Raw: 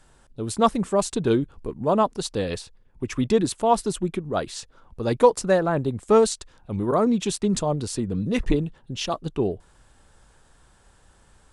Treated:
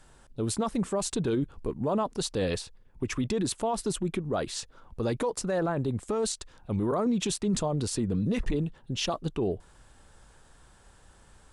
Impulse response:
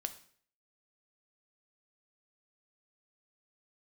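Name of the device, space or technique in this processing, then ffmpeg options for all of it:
stacked limiters: -af "alimiter=limit=-10dB:level=0:latency=1:release=401,alimiter=limit=-16dB:level=0:latency=1:release=75,alimiter=limit=-20.5dB:level=0:latency=1:release=15"

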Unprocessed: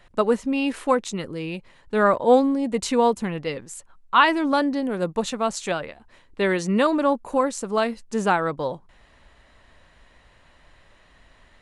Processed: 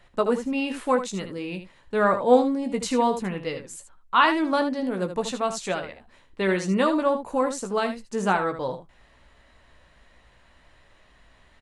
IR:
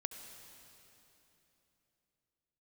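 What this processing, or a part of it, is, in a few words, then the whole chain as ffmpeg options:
slapback doubling: -filter_complex "[0:a]asplit=3[link_01][link_02][link_03];[link_02]adelay=16,volume=-8dB[link_04];[link_03]adelay=77,volume=-9.5dB[link_05];[link_01][link_04][link_05]amix=inputs=3:normalize=0,volume=-3dB"

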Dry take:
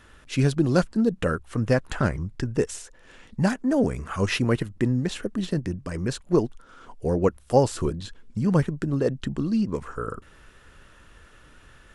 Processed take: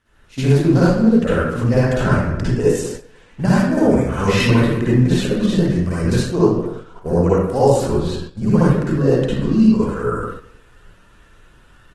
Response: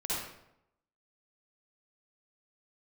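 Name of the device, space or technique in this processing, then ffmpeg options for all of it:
speakerphone in a meeting room: -filter_complex "[1:a]atrim=start_sample=2205[link_01];[0:a][link_01]afir=irnorm=-1:irlink=0,asplit=2[link_02][link_03];[link_03]adelay=200,highpass=300,lowpass=3400,asoftclip=type=hard:threshold=-11dB,volume=-16dB[link_04];[link_02][link_04]amix=inputs=2:normalize=0,dynaudnorm=framelen=130:gausssize=3:maxgain=6dB,agate=range=-9dB:threshold=-27dB:ratio=16:detection=peak,volume=-1dB" -ar 48000 -c:a libopus -b:a 16k

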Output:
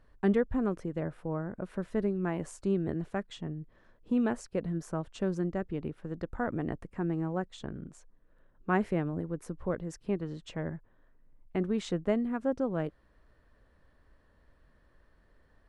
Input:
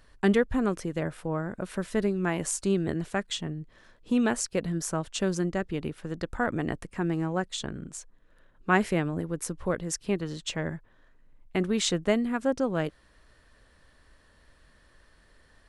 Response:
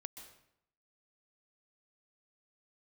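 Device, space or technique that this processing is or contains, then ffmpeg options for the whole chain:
through cloth: -af "highshelf=frequency=2300:gain=-16.5,volume=-3dB"

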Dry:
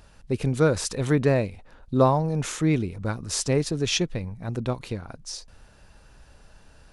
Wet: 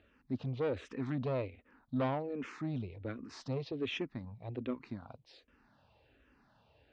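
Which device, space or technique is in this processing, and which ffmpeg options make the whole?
barber-pole phaser into a guitar amplifier: -filter_complex "[0:a]asplit=2[link_01][link_02];[link_02]afreqshift=-1.3[link_03];[link_01][link_03]amix=inputs=2:normalize=1,asoftclip=type=tanh:threshold=-21.5dB,highpass=99,equalizer=frequency=170:width_type=q:width=4:gain=-8,equalizer=frequency=260:width_type=q:width=4:gain=7,equalizer=frequency=1500:width_type=q:width=4:gain=-3,lowpass=frequency=3700:width=0.5412,lowpass=frequency=3700:width=1.3066,volume=-7dB"

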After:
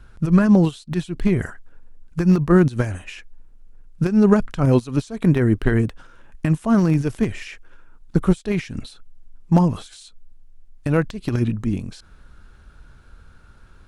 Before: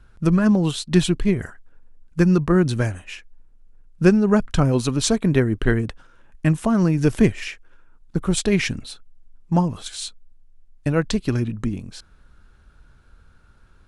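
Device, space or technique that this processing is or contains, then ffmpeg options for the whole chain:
de-esser from a sidechain: -filter_complex "[0:a]asplit=2[link_01][link_02];[link_02]highpass=6700,apad=whole_len=612024[link_03];[link_01][link_03]sidechaincompress=threshold=-48dB:ratio=12:attack=0.72:release=78,volume=5dB"

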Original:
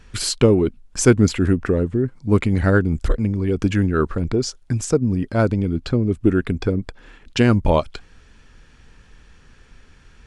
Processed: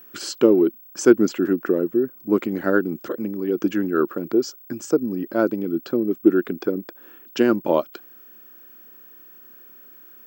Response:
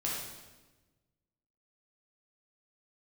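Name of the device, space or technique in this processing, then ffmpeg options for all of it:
old television with a line whistle: -af "highpass=frequency=200:width=0.5412,highpass=frequency=200:width=1.3066,equalizer=frequency=340:width_type=q:width=4:gain=10,equalizer=frequency=570:width_type=q:width=4:gain=4,equalizer=frequency=1400:width_type=q:width=4:gain=4,equalizer=frequency=2200:width_type=q:width=4:gain=-6,equalizer=frequency=3900:width_type=q:width=4:gain=-6,lowpass=frequency=7200:width=0.5412,lowpass=frequency=7200:width=1.3066,aeval=exprs='val(0)+0.0112*sin(2*PI*15734*n/s)':channel_layout=same,volume=-4.5dB"

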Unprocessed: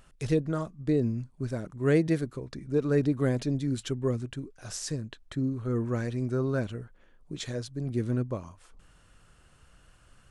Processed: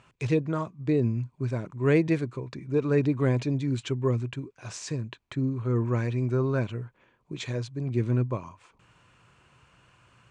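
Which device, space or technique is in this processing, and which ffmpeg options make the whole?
car door speaker: -af "highpass=92,equalizer=frequency=120:width_type=q:width=4:gain=7,equalizer=frequency=370:width_type=q:width=4:gain=3,equalizer=frequency=990:width_type=q:width=4:gain=9,equalizer=frequency=2400:width_type=q:width=4:gain=9,equalizer=frequency=5300:width_type=q:width=4:gain=-4,lowpass=frequency=7500:width=0.5412,lowpass=frequency=7500:width=1.3066"

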